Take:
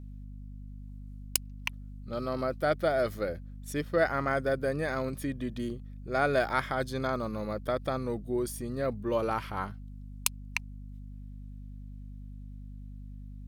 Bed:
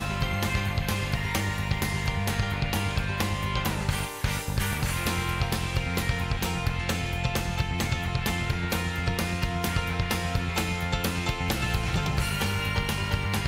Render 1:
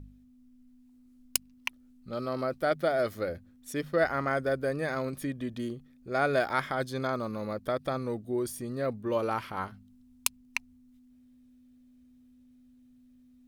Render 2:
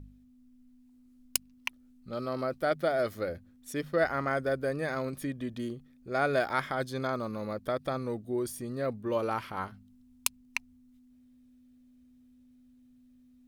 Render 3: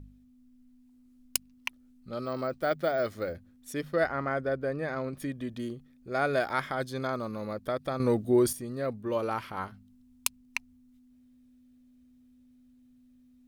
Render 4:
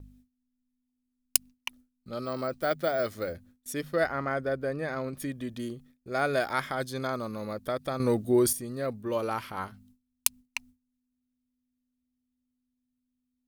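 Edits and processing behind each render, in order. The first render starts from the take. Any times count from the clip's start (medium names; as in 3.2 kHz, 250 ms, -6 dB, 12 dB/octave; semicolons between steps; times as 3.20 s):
de-hum 50 Hz, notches 4
trim -1 dB
2.25–3.35 s: careless resampling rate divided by 2×, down filtered, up hold; 4.06–5.20 s: peaking EQ 13 kHz -13 dB 2 oct; 8.00–8.53 s: gain +9 dB
gate with hold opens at -49 dBFS; treble shelf 5.1 kHz +7.5 dB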